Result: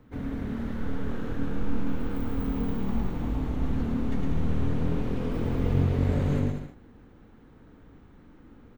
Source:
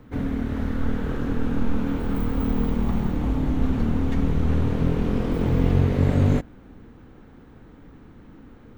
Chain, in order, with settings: bouncing-ball echo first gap 0.11 s, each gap 0.75×, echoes 5; gain -7.5 dB

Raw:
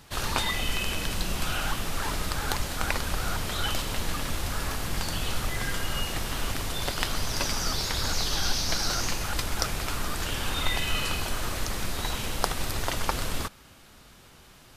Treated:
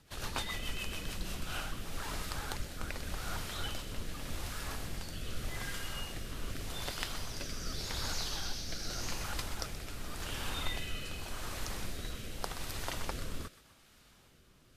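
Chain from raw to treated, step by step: thinning echo 0.126 s, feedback 46%, high-pass 660 Hz, level -13 dB; rotary speaker horn 7 Hz, later 0.85 Hz, at 0.94; gain -8 dB

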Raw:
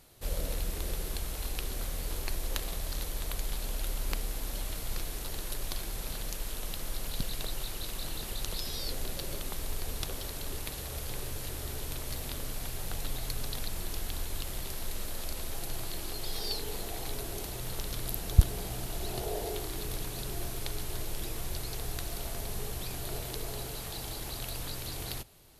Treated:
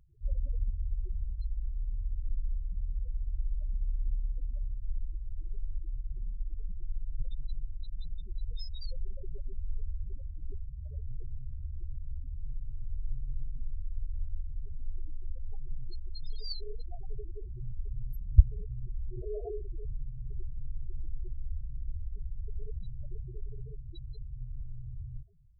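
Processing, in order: loudest bins only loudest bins 4; gain +3 dB

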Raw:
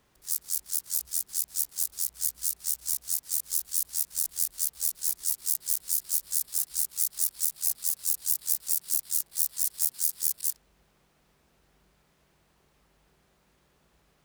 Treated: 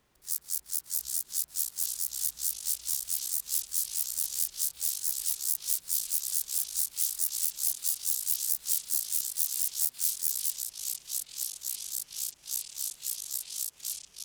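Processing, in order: de-hum 47.82 Hz, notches 36; echoes that change speed 0.692 s, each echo -4 st, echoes 3, each echo -6 dB; gain -2.5 dB

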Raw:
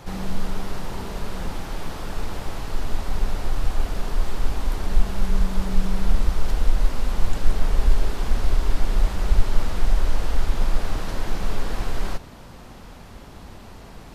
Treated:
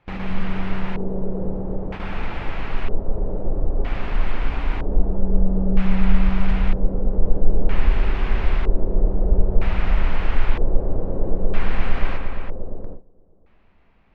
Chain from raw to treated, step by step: darkening echo 0.116 s, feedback 85%, low-pass 4300 Hz, level -8 dB; LFO low-pass square 0.52 Hz 500–2400 Hz; gate with hold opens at -18 dBFS

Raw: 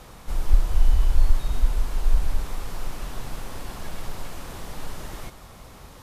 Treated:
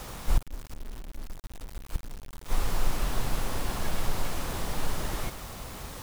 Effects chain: flipped gate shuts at -15 dBFS, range -27 dB; requantised 8-bit, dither none; gain +4 dB

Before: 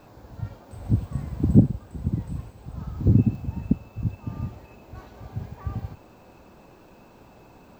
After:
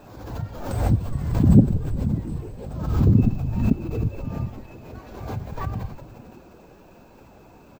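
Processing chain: bin magnitudes rounded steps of 15 dB; frequency-shifting echo 0.173 s, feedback 61%, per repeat -110 Hz, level -11.5 dB; backwards sustainer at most 52 dB/s; gain +1 dB

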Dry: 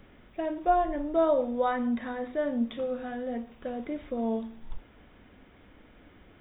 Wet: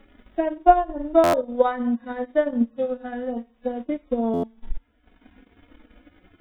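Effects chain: median-filter separation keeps harmonic; transient shaper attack +8 dB, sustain -12 dB; stuck buffer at 1.23/4.33, samples 512, times 8; gain +4 dB

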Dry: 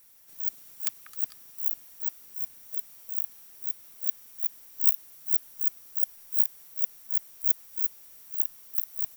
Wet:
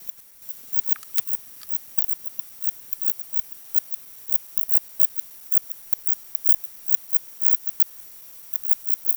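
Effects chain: slices in reverse order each 0.104 s, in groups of 4; maximiser +8.5 dB; gain -1 dB

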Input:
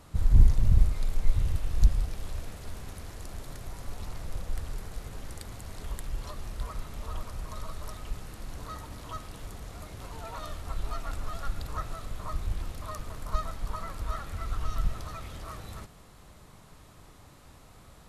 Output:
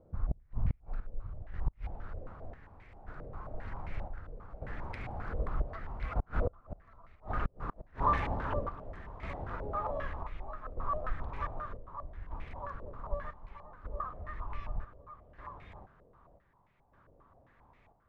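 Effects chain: Doppler pass-by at 7.27, 30 m/s, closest 13 m; chopper 0.65 Hz, depth 60%, duty 65%; flipped gate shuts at -34 dBFS, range -34 dB; stepped low-pass 7.5 Hz 530–2200 Hz; gain +15 dB

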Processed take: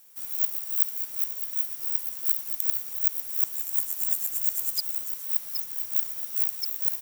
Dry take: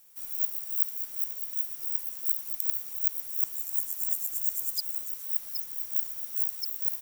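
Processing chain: HPF 74 Hz 24 dB/oct; short-mantissa float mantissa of 2-bit; gain +3 dB

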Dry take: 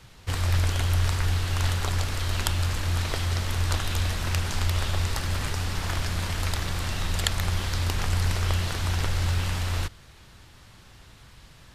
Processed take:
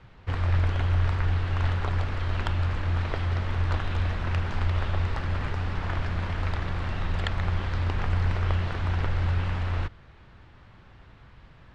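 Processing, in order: LPF 2100 Hz 12 dB/oct

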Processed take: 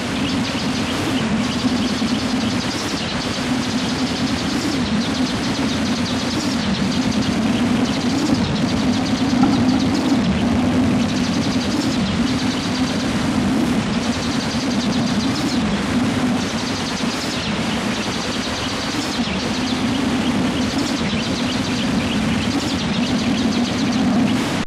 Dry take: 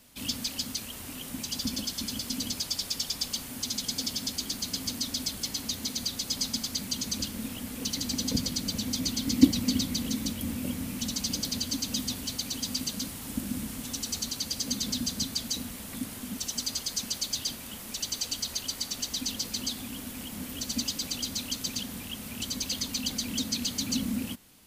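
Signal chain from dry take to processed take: delta modulation 64 kbps, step -21 dBFS; HPF 94 Hz 12 dB/oct; in parallel at -7 dB: sine folder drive 12 dB, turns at -4 dBFS; on the sum: tape spacing loss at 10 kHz 24 dB; on a send: echo with dull and thin repeats by turns 0.102 s, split 2200 Hz, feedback 80%, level -6 dB; on the sum: record warp 33 1/3 rpm, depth 250 cents

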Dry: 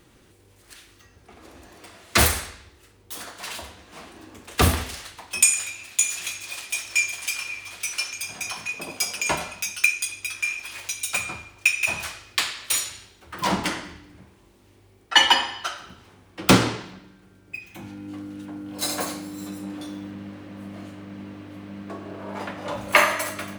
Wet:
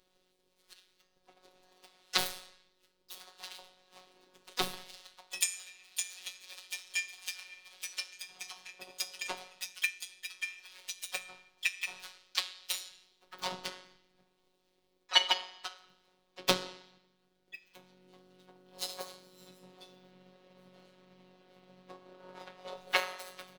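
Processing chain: graphic EQ 125/250/500/2000/4000/8000 Hz -8/-8/+5/-4/+9/-4 dB; robotiser 184 Hz; transient shaper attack +7 dB, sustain -1 dB; harmoniser -5 st -11 dB, +5 st -13 dB; gain -16.5 dB

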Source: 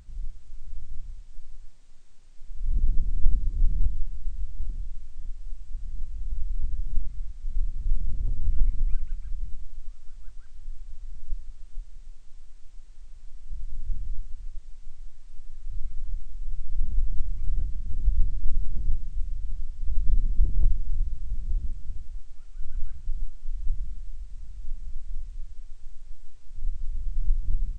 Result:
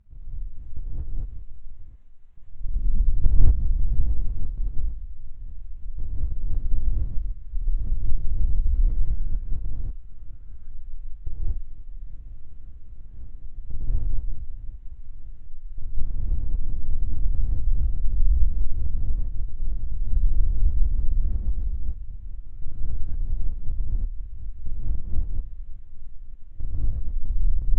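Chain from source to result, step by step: Wiener smoothing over 9 samples; low shelf 80 Hz +7.5 dB; level quantiser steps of 14 dB; air absorption 52 m; non-linear reverb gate 0.26 s rising, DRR -7 dB; gain -5.5 dB

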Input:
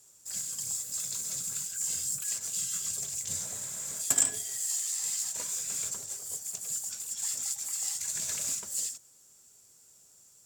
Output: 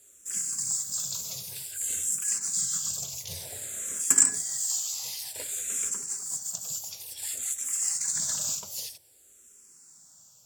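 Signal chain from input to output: endless phaser -0.54 Hz; gain +5.5 dB

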